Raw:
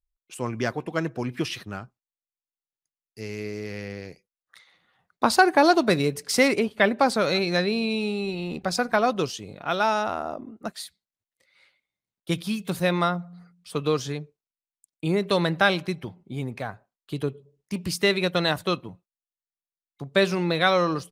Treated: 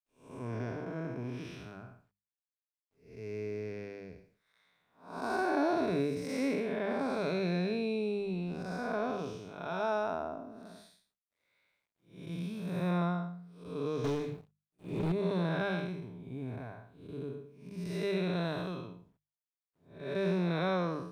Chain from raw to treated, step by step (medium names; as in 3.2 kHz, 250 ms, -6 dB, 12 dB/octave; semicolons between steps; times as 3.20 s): spectral blur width 254 ms; rippled EQ curve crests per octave 1.6, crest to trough 6 dB; bit crusher 12-bit; treble shelf 2.3 kHz -11.5 dB; 14.04–15.12 s: waveshaping leveller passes 3; hum notches 50/100/150/200 Hz; trim -5 dB